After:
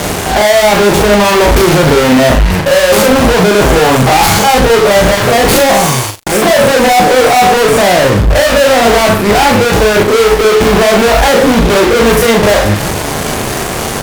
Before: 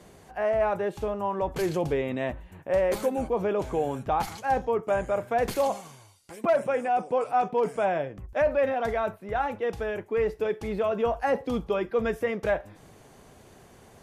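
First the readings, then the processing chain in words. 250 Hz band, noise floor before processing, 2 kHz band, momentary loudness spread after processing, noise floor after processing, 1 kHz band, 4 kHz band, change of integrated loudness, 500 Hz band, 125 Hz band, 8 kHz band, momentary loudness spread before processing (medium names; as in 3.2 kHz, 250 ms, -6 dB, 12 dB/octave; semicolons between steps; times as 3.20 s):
+22.5 dB, -53 dBFS, +24.5 dB, 5 LU, -16 dBFS, +19.0 dB, +33.0 dB, +20.0 dB, +18.5 dB, +25.5 dB, +33.5 dB, 5 LU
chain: spectrogram pixelated in time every 50 ms; fuzz box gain 56 dB, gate -53 dBFS; early reflections 39 ms -4.5 dB, 77 ms -18 dB; trim +5.5 dB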